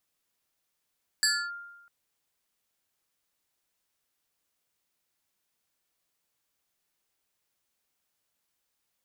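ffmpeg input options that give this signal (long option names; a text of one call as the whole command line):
ffmpeg -f lavfi -i "aevalsrc='0.106*pow(10,-3*t/1.06)*sin(2*PI*1400*t+2.6*clip(1-t/0.28,0,1)*sin(2*PI*2.23*1400*t))':duration=0.65:sample_rate=44100" out.wav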